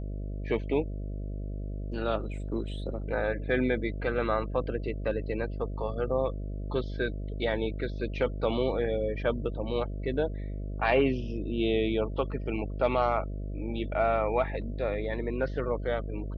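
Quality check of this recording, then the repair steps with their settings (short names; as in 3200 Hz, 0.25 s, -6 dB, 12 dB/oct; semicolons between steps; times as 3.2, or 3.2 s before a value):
buzz 50 Hz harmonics 13 -35 dBFS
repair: de-hum 50 Hz, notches 13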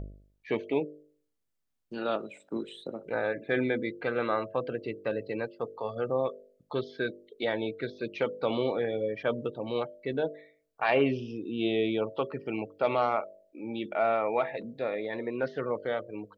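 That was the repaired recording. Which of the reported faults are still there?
none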